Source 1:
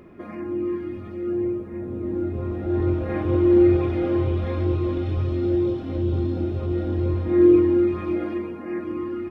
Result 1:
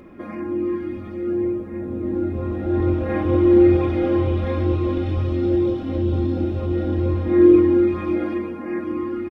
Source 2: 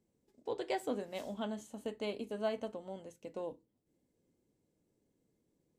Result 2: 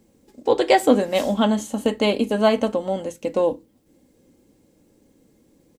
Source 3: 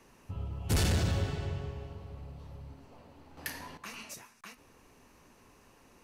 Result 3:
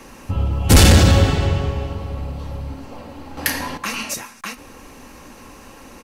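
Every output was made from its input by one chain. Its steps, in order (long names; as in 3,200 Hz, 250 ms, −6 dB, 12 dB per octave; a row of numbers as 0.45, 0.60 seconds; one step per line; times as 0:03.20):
comb filter 3.7 ms, depth 34%
normalise the peak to −3 dBFS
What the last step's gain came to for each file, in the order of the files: +3.0, +19.5, +18.5 decibels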